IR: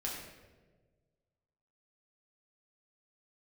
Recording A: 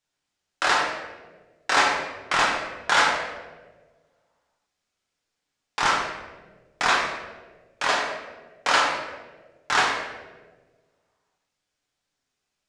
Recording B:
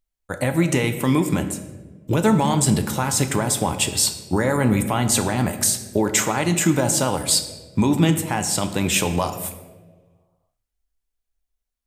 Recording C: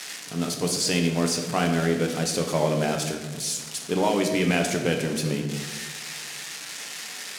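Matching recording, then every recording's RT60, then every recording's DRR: A; 1.4 s, 1.4 s, 1.4 s; -4.0 dB, 7.0 dB, 2.0 dB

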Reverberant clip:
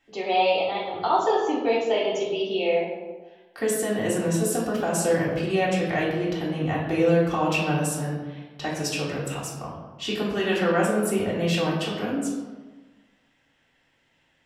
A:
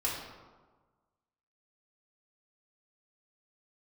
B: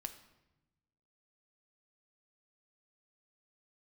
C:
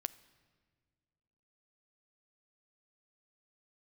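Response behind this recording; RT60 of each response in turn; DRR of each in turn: A; 1.4 s, 1.0 s, no single decay rate; -7.0 dB, 7.5 dB, 15.0 dB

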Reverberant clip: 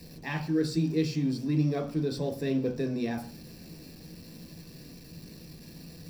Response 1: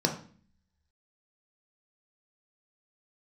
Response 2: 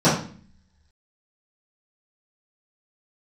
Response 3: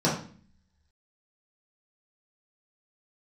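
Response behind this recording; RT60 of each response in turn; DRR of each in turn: 1; 0.45 s, 0.45 s, 0.45 s; 1.5 dB, -14.5 dB, -8.0 dB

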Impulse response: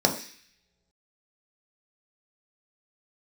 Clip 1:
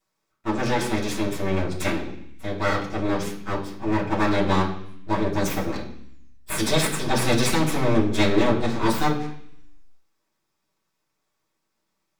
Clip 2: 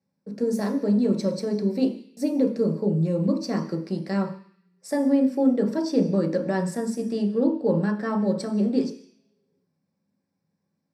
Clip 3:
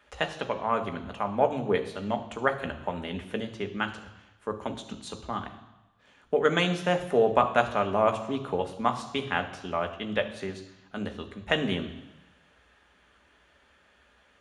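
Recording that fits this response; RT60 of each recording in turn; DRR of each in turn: 2; 0.65 s, no single decay rate, 1.0 s; -7.0 dB, 1.5 dB, 5.5 dB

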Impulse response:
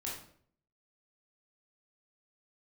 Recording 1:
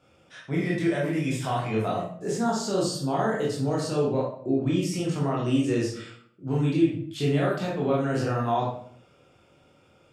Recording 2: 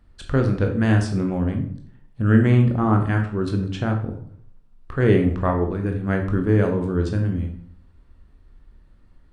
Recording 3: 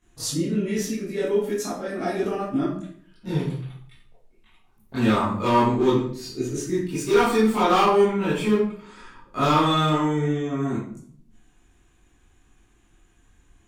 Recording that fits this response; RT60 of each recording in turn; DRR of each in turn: 1; 0.60 s, 0.60 s, 0.60 s; -5.0 dB, 3.0 dB, -12.5 dB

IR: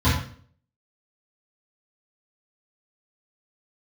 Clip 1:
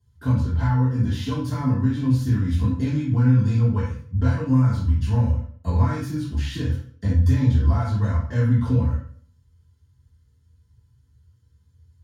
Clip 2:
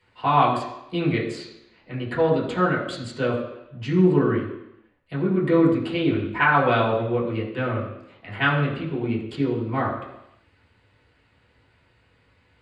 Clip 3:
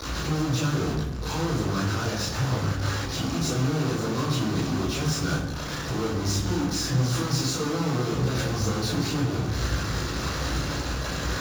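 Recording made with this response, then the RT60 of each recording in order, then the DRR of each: 1; 0.50 s, 0.85 s, 1.1 s; -13.5 dB, -6.0 dB, -8.0 dB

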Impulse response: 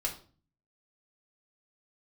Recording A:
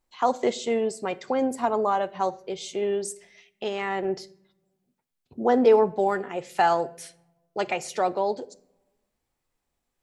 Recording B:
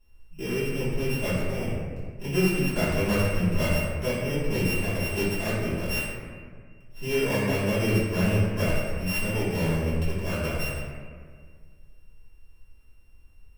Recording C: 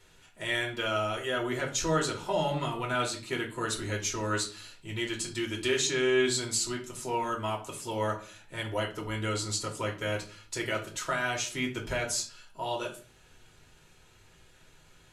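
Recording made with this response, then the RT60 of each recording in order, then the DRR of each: C; no single decay rate, 1.8 s, 0.40 s; 13.5 dB, -13.5 dB, -1.5 dB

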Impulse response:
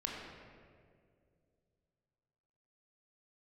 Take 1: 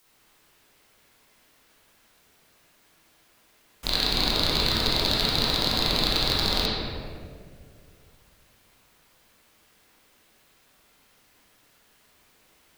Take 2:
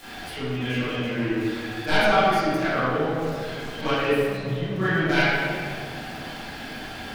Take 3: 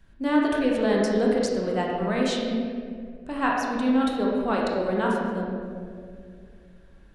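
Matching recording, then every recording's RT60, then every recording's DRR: 3; 2.2 s, 2.2 s, 2.2 s; -7.0 dB, -14.0 dB, -2.5 dB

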